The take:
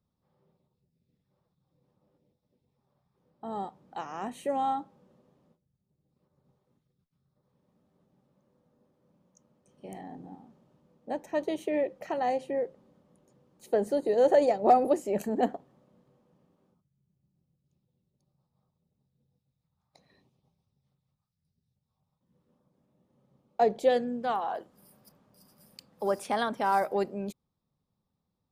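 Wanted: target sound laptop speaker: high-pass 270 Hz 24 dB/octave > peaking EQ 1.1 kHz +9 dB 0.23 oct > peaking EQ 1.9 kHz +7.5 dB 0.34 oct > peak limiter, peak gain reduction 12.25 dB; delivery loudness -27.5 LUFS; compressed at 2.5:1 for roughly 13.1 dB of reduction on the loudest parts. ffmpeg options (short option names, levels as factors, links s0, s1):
-af "acompressor=threshold=0.0141:ratio=2.5,highpass=f=270:w=0.5412,highpass=f=270:w=1.3066,equalizer=f=1100:t=o:w=0.23:g=9,equalizer=f=1900:t=o:w=0.34:g=7.5,volume=6.68,alimiter=limit=0.141:level=0:latency=1"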